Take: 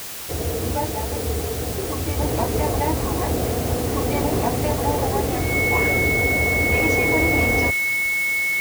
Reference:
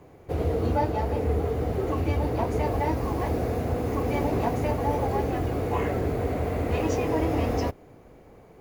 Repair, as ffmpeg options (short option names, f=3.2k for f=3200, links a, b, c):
-af "bandreject=f=2.2k:w=30,afwtdn=0.022,asetnsamples=n=441:p=0,asendcmd='2.19 volume volume -4dB',volume=0dB"